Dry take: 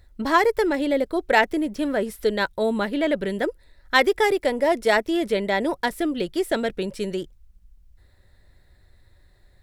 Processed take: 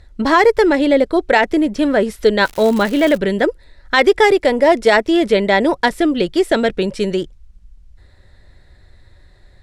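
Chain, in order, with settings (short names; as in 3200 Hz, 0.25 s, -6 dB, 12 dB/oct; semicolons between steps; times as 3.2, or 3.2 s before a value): LPF 7700 Hz 12 dB/oct; 2.43–3.16 crackle 340/s -29 dBFS; maximiser +10 dB; gain -1 dB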